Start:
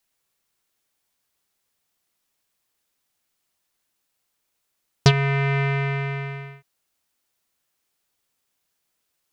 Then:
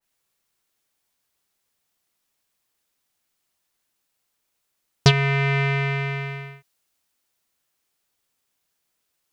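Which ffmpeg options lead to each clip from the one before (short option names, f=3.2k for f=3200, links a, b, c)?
-af "adynamicequalizer=threshold=0.0126:dfrequency=2200:dqfactor=0.7:tfrequency=2200:tqfactor=0.7:attack=5:release=100:ratio=0.375:range=3:mode=boostabove:tftype=highshelf"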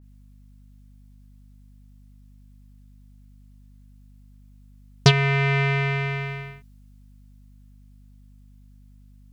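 -af "aeval=exprs='val(0)+0.00355*(sin(2*PI*50*n/s)+sin(2*PI*2*50*n/s)/2+sin(2*PI*3*50*n/s)/3+sin(2*PI*4*50*n/s)/4+sin(2*PI*5*50*n/s)/5)':c=same"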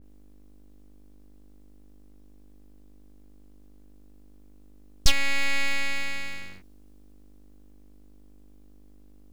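-af "aeval=exprs='abs(val(0))':c=same"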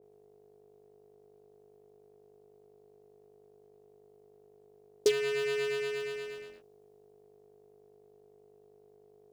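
-af "aeval=exprs='val(0)*sin(2*PI*420*n/s)':c=same,volume=-7.5dB"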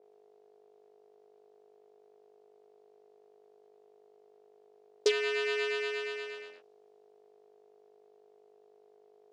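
-af "highpass=530,lowpass=5.1k,volume=4dB"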